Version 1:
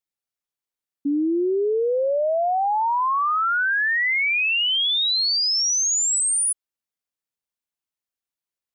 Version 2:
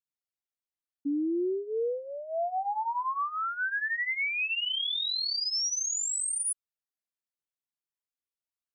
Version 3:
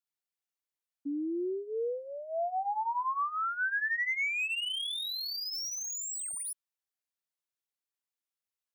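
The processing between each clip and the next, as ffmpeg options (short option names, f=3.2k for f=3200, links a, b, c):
-af "flanger=delay=0.7:depth=6.3:regen=-7:speed=0.46:shape=sinusoidal,volume=-6.5dB"
-filter_complex "[0:a]lowshelf=f=380:g=-8,acrossover=split=420|1800|2000[a][b][c][d];[d]asoftclip=type=tanh:threshold=-35.5dB[e];[a][b][c][e]amix=inputs=4:normalize=0"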